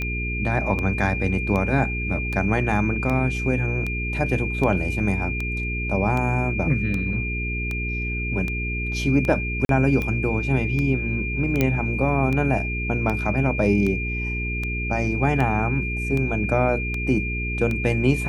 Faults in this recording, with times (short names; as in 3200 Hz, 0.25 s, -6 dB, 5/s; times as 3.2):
hum 60 Hz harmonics 7 -28 dBFS
tick 78 rpm -15 dBFS
tone 2400 Hz -28 dBFS
9.65–9.69 gap 42 ms
11.61 pop -7 dBFS